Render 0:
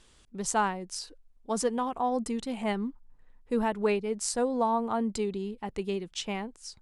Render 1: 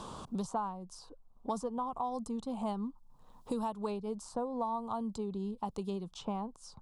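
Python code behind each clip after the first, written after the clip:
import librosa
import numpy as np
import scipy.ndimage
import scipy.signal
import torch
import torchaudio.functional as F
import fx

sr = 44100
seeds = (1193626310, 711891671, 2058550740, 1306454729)

y = fx.curve_eq(x, sr, hz=(180.0, 350.0, 1100.0, 1900.0, 3600.0), db=(0, -8, 3, -25, -8))
y = fx.band_squash(y, sr, depth_pct=100)
y = y * librosa.db_to_amplitude(-5.0)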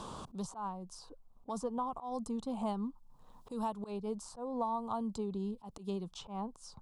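y = fx.auto_swell(x, sr, attack_ms=122.0)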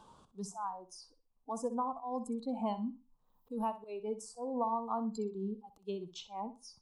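y = fx.noise_reduce_blind(x, sr, reduce_db=18)
y = fx.room_flutter(y, sr, wall_m=10.7, rt60_s=0.29)
y = y * librosa.db_to_amplitude(1.5)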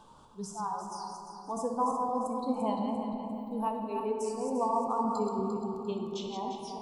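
y = fx.reverse_delay_fb(x, sr, ms=174, feedback_pct=60, wet_db=-5)
y = fx.room_shoebox(y, sr, seeds[0], volume_m3=220.0, walls='hard', distance_m=0.34)
y = y * librosa.db_to_amplitude(2.5)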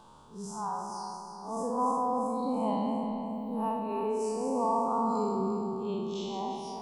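y = fx.spec_blur(x, sr, span_ms=115.0)
y = y * librosa.db_to_amplitude(3.0)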